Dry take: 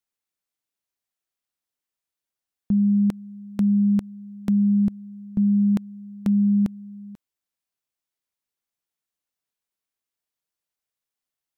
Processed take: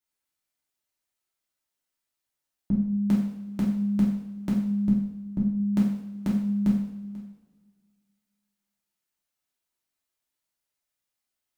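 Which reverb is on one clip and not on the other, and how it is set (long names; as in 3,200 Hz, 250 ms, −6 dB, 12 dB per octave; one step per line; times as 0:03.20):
coupled-rooms reverb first 0.69 s, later 2 s, DRR −6 dB
level −4 dB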